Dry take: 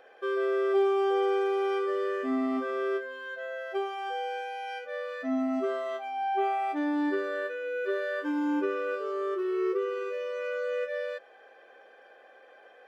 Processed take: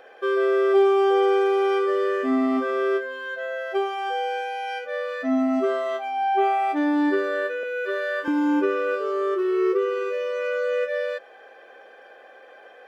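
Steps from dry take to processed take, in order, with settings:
0:07.63–0:08.28: high-pass filter 530 Hz 12 dB per octave
level +7 dB

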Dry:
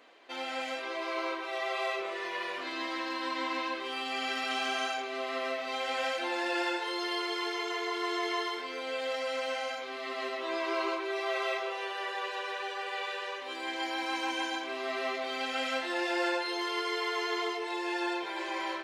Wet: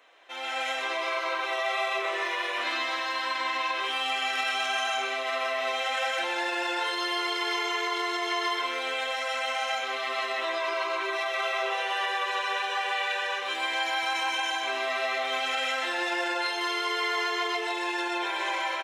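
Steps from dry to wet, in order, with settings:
brickwall limiter −28.5 dBFS, peak gain reduction 9 dB
Bessel high-pass filter 650 Hz, order 2
notch filter 4,600 Hz, Q 6.6
single-tap delay 129 ms −6 dB
automatic gain control gain up to 8 dB
level +1 dB

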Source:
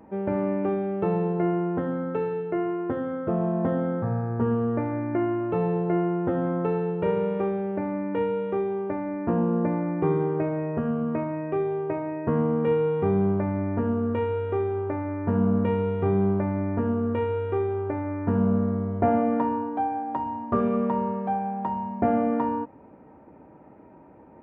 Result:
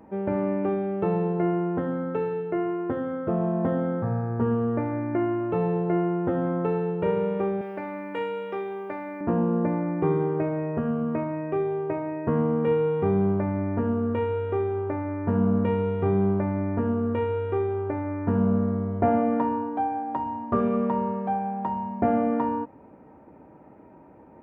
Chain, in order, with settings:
0:07.61–0:09.21: spectral tilt +4 dB per octave

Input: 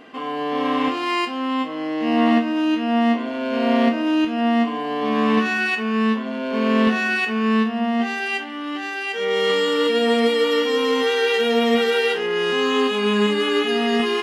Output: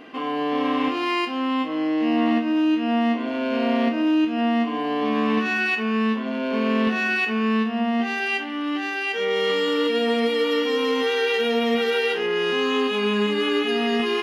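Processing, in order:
thirty-one-band graphic EQ 315 Hz +5 dB, 2,500 Hz +3 dB, 8,000 Hz −8 dB
downward compressor 2 to 1, threshold −21 dBFS, peak gain reduction 6 dB

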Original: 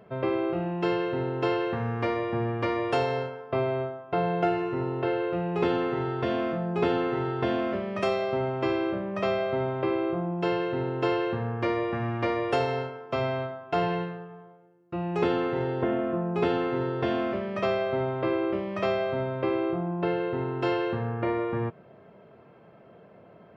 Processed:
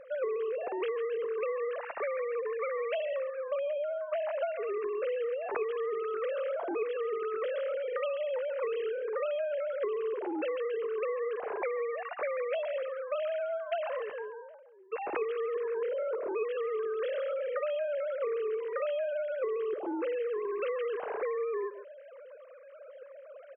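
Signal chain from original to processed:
three sine waves on the formant tracks
single-tap delay 139 ms −17.5 dB
downward compressor, threshold −34 dBFS, peak gain reduction 14.5 dB
level +3 dB

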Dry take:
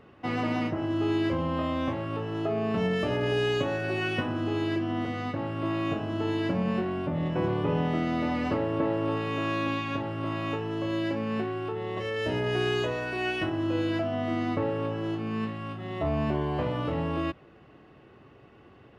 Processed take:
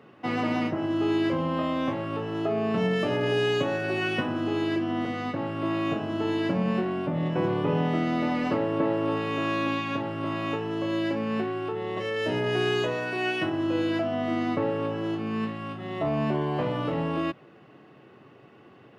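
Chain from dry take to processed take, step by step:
high-pass filter 120 Hz 24 dB per octave
level +2 dB

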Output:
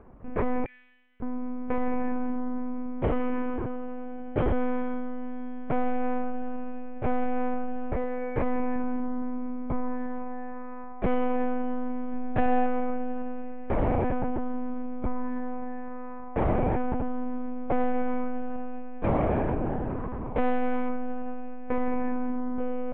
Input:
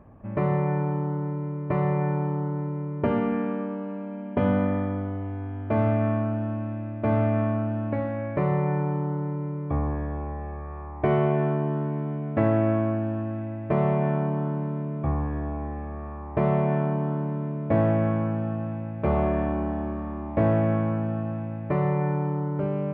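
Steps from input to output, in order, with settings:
0:00.65–0:01.22: inverse Chebyshev band-stop filter 110–1,200 Hz, stop band 40 dB
soft clipping −16.5 dBFS, distortion −18 dB
0:12.13–0:12.67: comb filter 1.2 ms, depth 91%
one-pitch LPC vocoder at 8 kHz 250 Hz
0:20.35–0:20.89: high-shelf EQ 2,500 Hz +10 dB

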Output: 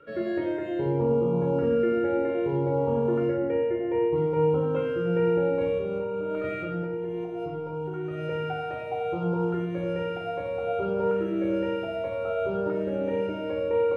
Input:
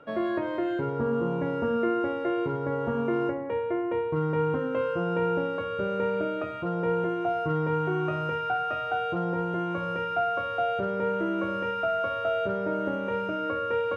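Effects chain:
0:05.61–0:08.19: compressor whose output falls as the input rises −33 dBFS, ratio −1
auto-filter notch saw up 0.63 Hz 830–2,100 Hz
convolution reverb RT60 0.95 s, pre-delay 8 ms, DRR 1.5 dB
level −3.5 dB

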